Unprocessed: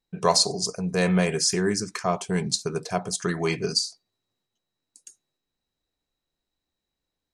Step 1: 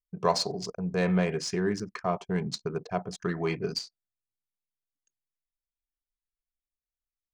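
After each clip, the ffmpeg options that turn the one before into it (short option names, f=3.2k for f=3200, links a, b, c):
-af "anlmdn=2.51,adynamicsmooth=sensitivity=2:basefreq=4.1k,aemphasis=mode=reproduction:type=50kf,volume=-3.5dB"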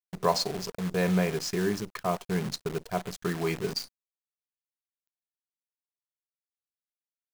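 -af "acrusher=bits=7:dc=4:mix=0:aa=0.000001"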